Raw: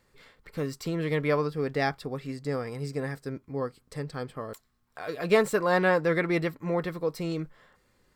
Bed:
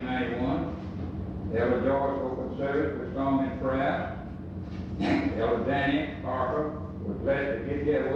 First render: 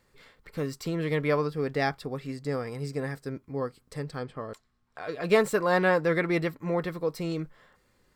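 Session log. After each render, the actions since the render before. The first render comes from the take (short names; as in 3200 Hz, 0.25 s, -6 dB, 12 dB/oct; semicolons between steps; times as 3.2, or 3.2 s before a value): 4.19–5.24 air absorption 60 m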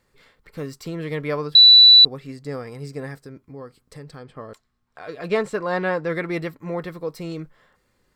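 1.55–2.05 bleep 3960 Hz -6 dBFS; 3.22–4.35 compressor 2.5:1, threshold -36 dBFS; 5.28–6.1 air absorption 61 m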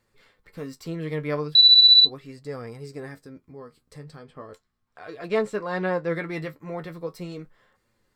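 flange 0.38 Hz, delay 8.6 ms, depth 5.1 ms, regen +47%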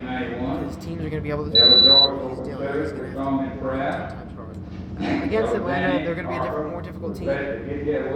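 add bed +2 dB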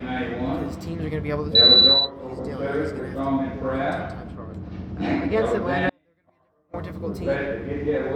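1.82–2.44 dip -12 dB, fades 0.28 s; 4.35–5.37 high shelf 5700 Hz -11 dB; 5.89–6.74 flipped gate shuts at -20 dBFS, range -40 dB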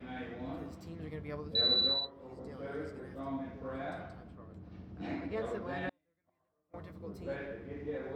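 gain -15.5 dB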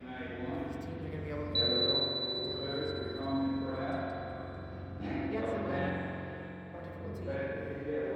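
diffused feedback echo 0.539 s, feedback 47%, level -12 dB; spring tank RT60 2.4 s, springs 44 ms, chirp 40 ms, DRR -2 dB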